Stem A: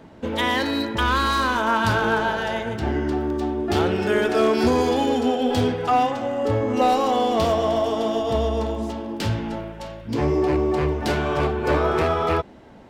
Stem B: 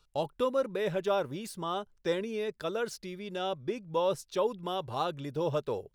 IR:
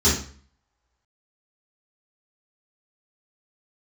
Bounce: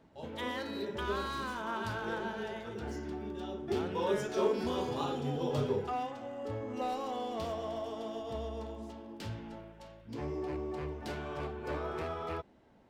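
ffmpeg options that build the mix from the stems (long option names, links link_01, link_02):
-filter_complex "[0:a]volume=-17dB[link_01];[1:a]volume=-7.5dB,afade=type=in:start_time=3.42:duration=0.51:silence=0.334965,asplit=2[link_02][link_03];[link_03]volume=-16dB[link_04];[2:a]atrim=start_sample=2205[link_05];[link_04][link_05]afir=irnorm=-1:irlink=0[link_06];[link_01][link_02][link_06]amix=inputs=3:normalize=0"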